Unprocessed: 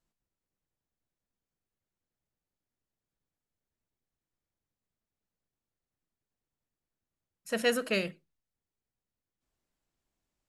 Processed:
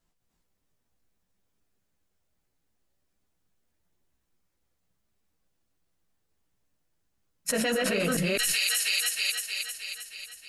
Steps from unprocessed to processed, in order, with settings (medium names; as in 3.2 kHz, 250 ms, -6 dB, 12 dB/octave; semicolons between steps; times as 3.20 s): chunks repeated in reverse 209 ms, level 0 dB; gate -47 dBFS, range -27 dB; chorus voices 6, 0.53 Hz, delay 14 ms, depth 4.1 ms; feedback echo behind a high-pass 314 ms, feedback 60%, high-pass 4.5 kHz, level -12 dB; level flattener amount 100%; trim -3 dB